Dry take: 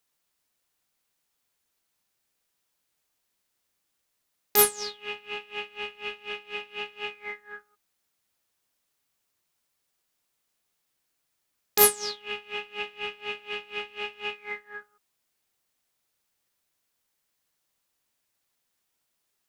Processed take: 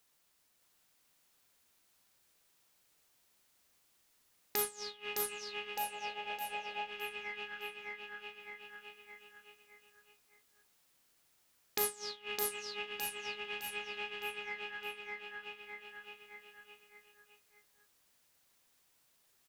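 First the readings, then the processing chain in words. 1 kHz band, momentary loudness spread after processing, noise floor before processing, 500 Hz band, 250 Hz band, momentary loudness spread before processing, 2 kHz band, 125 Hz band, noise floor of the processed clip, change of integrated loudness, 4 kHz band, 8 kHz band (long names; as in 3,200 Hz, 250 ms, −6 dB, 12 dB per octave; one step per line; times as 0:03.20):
−6.5 dB, 18 LU, −78 dBFS, −11.0 dB, −9.5 dB, 18 LU, −6.0 dB, −9.5 dB, −73 dBFS, −11.5 dB, −7.5 dB, −12.5 dB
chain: repeating echo 611 ms, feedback 39%, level −4 dB
gain on a spectral selection 0:05.76–0:06.90, 440–910 Hz +11 dB
downward compressor 2 to 1, threshold −52 dBFS, peak gain reduction 20.5 dB
level +4 dB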